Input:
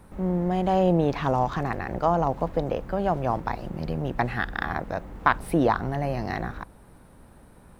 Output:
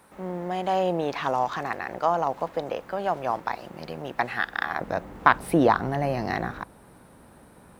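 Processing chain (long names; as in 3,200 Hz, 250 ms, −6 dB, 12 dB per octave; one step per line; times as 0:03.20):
high-pass filter 800 Hz 6 dB per octave, from 0:04.81 160 Hz
level +3 dB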